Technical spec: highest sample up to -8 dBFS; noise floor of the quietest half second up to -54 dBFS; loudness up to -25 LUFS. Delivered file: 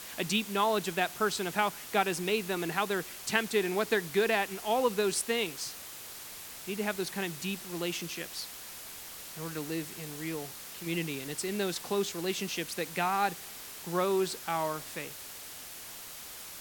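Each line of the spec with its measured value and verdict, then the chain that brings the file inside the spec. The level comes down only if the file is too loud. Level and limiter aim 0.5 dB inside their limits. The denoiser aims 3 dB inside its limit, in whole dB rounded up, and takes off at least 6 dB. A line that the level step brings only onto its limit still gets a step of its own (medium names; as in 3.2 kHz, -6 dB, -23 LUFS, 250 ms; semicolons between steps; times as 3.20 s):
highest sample -9.5 dBFS: pass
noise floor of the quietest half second -45 dBFS: fail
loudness -32.5 LUFS: pass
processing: noise reduction 12 dB, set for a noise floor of -45 dBFS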